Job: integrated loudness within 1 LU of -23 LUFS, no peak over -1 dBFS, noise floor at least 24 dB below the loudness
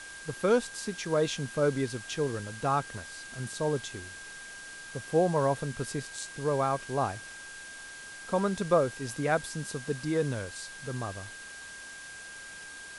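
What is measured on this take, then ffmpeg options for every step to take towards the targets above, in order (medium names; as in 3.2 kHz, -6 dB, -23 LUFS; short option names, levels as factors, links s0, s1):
steady tone 1.6 kHz; tone level -44 dBFS; noise floor -45 dBFS; noise floor target -55 dBFS; loudness -31.0 LUFS; peak level -12.5 dBFS; loudness target -23.0 LUFS
-> -af "bandreject=f=1600:w=30"
-af "afftdn=nr=10:nf=-45"
-af "volume=2.51"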